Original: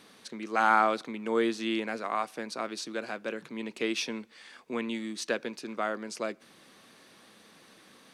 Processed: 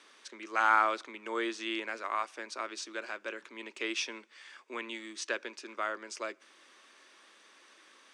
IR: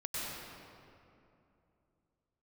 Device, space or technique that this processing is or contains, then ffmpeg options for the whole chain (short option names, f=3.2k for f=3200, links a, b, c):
phone speaker on a table: -af "highpass=f=370:w=0.5412,highpass=f=370:w=1.3066,equalizer=f=470:t=q:w=4:g=-9,equalizer=f=730:t=q:w=4:g=-9,equalizer=f=4.2k:t=q:w=4:g=-6,lowpass=f=8.2k:w=0.5412,lowpass=f=8.2k:w=1.3066"